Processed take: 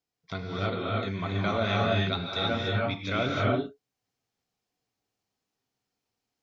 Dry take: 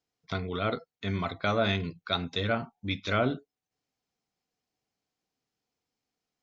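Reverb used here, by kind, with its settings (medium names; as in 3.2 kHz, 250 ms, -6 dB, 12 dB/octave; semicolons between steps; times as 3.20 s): gated-style reverb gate 350 ms rising, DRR -3.5 dB; trim -3 dB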